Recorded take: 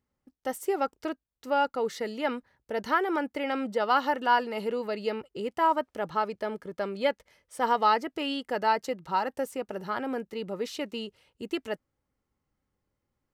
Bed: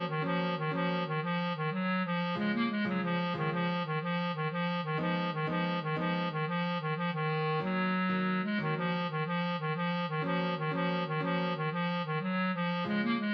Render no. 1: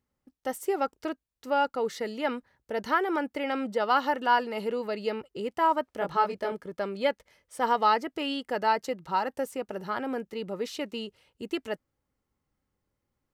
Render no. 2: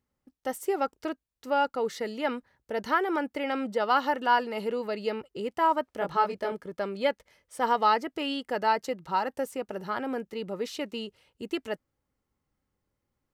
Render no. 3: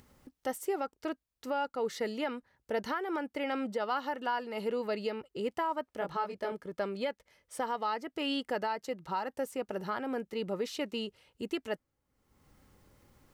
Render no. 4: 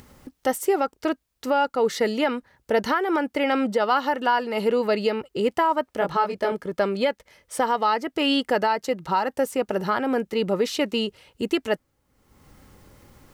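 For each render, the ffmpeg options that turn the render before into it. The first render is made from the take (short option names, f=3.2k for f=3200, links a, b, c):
-filter_complex "[0:a]asettb=1/sr,asplit=3[a][b][c];[a]atrim=end=5.994[d];[b]atrim=start=5.99:end=6.52,asetpts=PTS-STARTPTS,afade=t=in:d=0.004:c=qsin,afade=t=out:st=0.526:d=0.004:c=qsin,asplit=2[e][f];[f]adelay=21,volume=-2dB[g];[e][g]amix=inputs=2:normalize=0,atrim=end_sample=23373[h];[c]atrim=start=6.516[i];[d][h]acrossfade=d=0.004:c1=hsin:c2=qsin[j];[j][i]acrossfade=d=0.004:c1=qsin:c2=hsin"
-af anull
-af "acompressor=mode=upward:threshold=-46dB:ratio=2.5,alimiter=limit=-23.5dB:level=0:latency=1:release=485"
-af "volume=11.5dB"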